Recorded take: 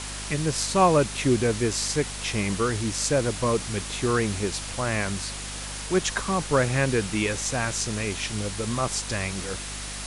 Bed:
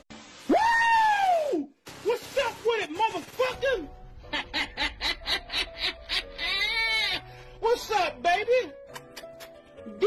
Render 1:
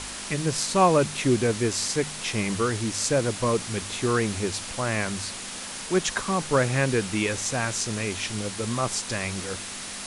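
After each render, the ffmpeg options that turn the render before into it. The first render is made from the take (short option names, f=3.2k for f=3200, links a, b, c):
-af "bandreject=f=50:t=h:w=4,bandreject=f=100:t=h:w=4,bandreject=f=150:t=h:w=4"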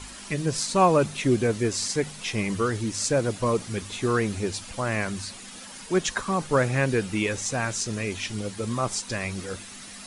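-af "afftdn=nr=10:nf=-36"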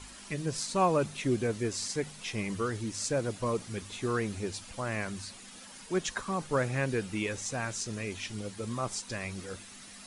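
-af "volume=-7dB"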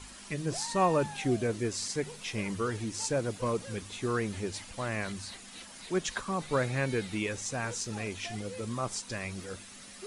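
-filter_complex "[1:a]volume=-22dB[a];[0:a][a]amix=inputs=2:normalize=0"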